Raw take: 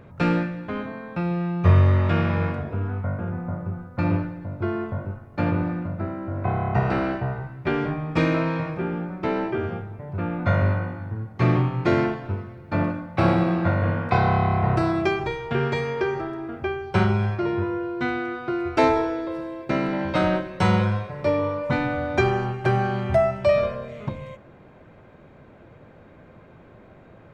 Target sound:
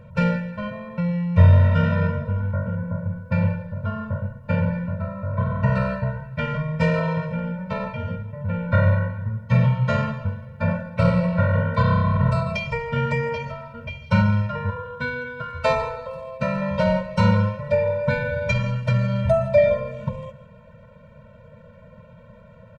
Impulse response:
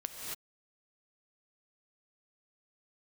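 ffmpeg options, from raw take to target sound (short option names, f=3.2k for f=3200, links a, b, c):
-filter_complex "[0:a]atempo=1.2,asplit=2[a][b];[1:a]atrim=start_sample=2205,asetrate=74970,aresample=44100[c];[b][c]afir=irnorm=-1:irlink=0,volume=-7dB[d];[a][d]amix=inputs=2:normalize=0,afftfilt=real='re*eq(mod(floor(b*sr/1024/220),2),0)':imag='im*eq(mod(floor(b*sr/1024/220),2),0)':win_size=1024:overlap=0.75,volume=2dB"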